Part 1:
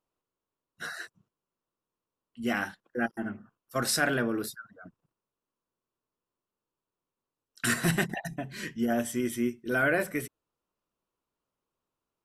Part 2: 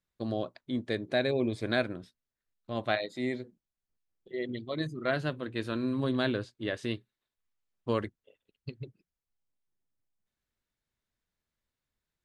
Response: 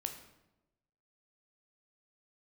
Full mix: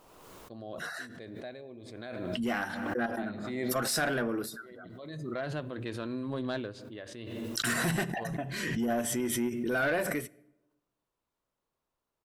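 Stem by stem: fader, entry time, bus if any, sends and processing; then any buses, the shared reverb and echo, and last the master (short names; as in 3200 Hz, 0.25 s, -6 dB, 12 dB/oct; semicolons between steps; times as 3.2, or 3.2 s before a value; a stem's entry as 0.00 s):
-4.0 dB, 0.00 s, send -14 dB, dry
-6.5 dB, 0.30 s, send -21.5 dB, auto duck -18 dB, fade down 1.05 s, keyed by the first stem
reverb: on, RT60 0.95 s, pre-delay 11 ms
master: bell 730 Hz +4.5 dB 1.4 oct; soft clip -22.5 dBFS, distortion -15 dB; backwards sustainer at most 29 dB/s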